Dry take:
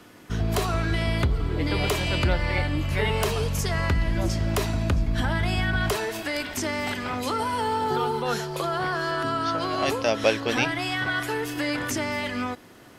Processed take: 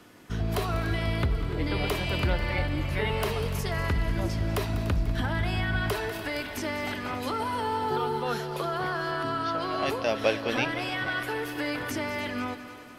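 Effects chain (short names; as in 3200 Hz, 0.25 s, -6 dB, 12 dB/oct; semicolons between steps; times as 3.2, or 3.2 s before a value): dynamic EQ 7100 Hz, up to -8 dB, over -51 dBFS, Q 1.5; on a send: multi-head echo 98 ms, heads second and third, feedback 60%, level -14.5 dB; on the sum: gain -3.5 dB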